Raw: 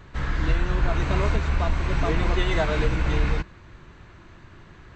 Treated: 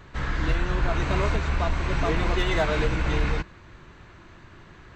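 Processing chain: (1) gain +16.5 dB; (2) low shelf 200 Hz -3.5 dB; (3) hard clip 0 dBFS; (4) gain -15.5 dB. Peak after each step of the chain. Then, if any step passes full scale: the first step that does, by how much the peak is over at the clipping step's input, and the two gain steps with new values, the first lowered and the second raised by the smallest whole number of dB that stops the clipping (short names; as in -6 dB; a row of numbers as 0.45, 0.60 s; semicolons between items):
+7.0, +5.5, 0.0, -15.5 dBFS; step 1, 5.5 dB; step 1 +10.5 dB, step 4 -9.5 dB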